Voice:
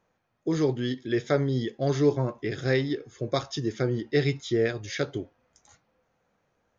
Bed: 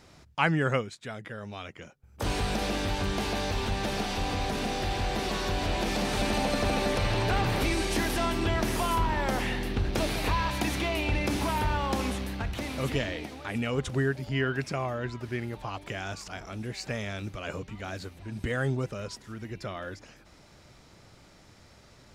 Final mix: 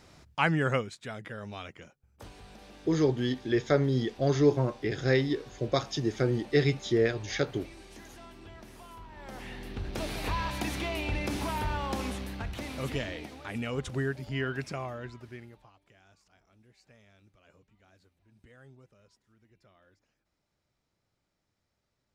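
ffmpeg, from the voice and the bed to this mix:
ffmpeg -i stem1.wav -i stem2.wav -filter_complex "[0:a]adelay=2400,volume=-0.5dB[link_01];[1:a]volume=16.5dB,afade=type=out:start_time=1.58:duration=0.72:silence=0.0944061,afade=type=in:start_time=9.11:duration=1.27:silence=0.133352,afade=type=out:start_time=14.64:duration=1.09:silence=0.0794328[link_02];[link_01][link_02]amix=inputs=2:normalize=0" out.wav

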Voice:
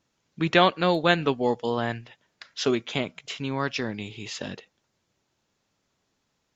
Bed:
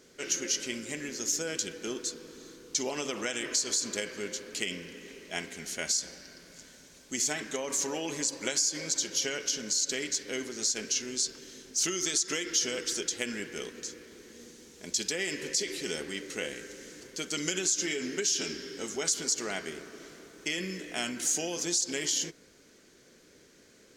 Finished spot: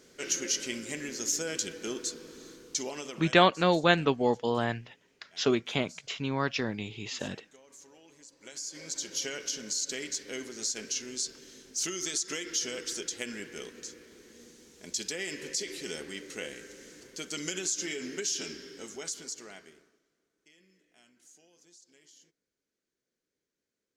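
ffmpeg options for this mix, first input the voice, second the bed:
ffmpeg -i stem1.wav -i stem2.wav -filter_complex "[0:a]adelay=2800,volume=-2dB[link_01];[1:a]volume=19.5dB,afade=type=out:start_time=2.52:duration=0.97:silence=0.0707946,afade=type=in:start_time=8.36:duration=0.83:silence=0.105925,afade=type=out:start_time=18.33:duration=1.69:silence=0.0501187[link_02];[link_01][link_02]amix=inputs=2:normalize=0" out.wav

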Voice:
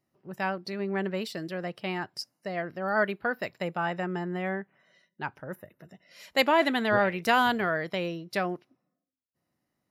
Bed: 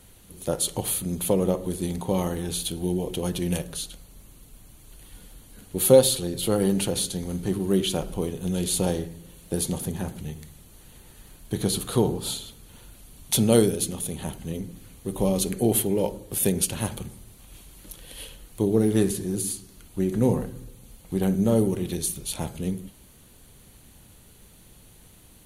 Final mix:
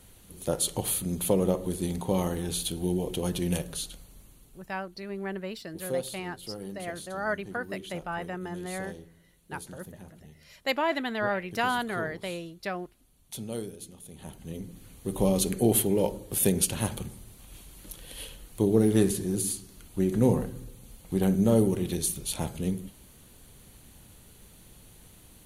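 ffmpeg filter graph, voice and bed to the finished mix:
ffmpeg -i stem1.wav -i stem2.wav -filter_complex "[0:a]adelay=4300,volume=-4.5dB[link_01];[1:a]volume=14dB,afade=type=out:start_time=4.01:duration=0.86:silence=0.177828,afade=type=in:start_time=14.04:duration=1.11:silence=0.158489[link_02];[link_01][link_02]amix=inputs=2:normalize=0" out.wav

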